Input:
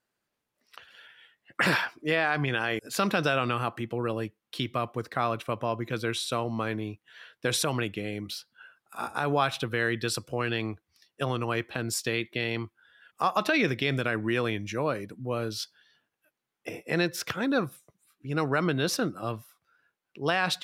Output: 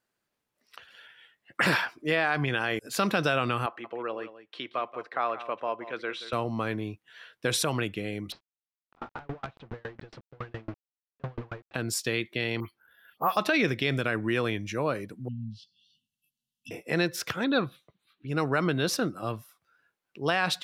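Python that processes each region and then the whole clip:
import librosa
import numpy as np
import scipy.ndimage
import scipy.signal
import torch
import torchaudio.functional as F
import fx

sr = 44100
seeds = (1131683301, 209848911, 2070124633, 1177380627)

y = fx.chain(x, sr, fx.bandpass_edges(low_hz=460.0, high_hz=2700.0),
    fx.echo_single(ms=179, db=-13.5), at=(3.66, 6.33))
y = fx.chain(y, sr, fx.quant_companded(bits=2),
    fx.spacing_loss(db_at_10k=45),
    fx.tremolo_decay(direction='decaying', hz=7.2, depth_db=36), at=(8.32, 11.74))
y = fx.chain(y, sr, fx.high_shelf(hz=4000.0, db=-5.5),
    fx.dispersion(late='highs', ms=121.0, hz=3000.0),
    fx.resample_bad(factor=3, down='filtered', up='hold'), at=(12.6, 13.37))
y = fx.chain(y, sr, fx.env_lowpass_down(base_hz=490.0, full_db=-26.0),
    fx.brickwall_bandstop(low_hz=270.0, high_hz=2600.0), at=(15.28, 16.71))
y = fx.chain(y, sr, fx.high_shelf_res(hz=5300.0, db=-12.5, q=3.0),
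    fx.notch(hz=5200.0, q=10.0), at=(17.44, 18.28))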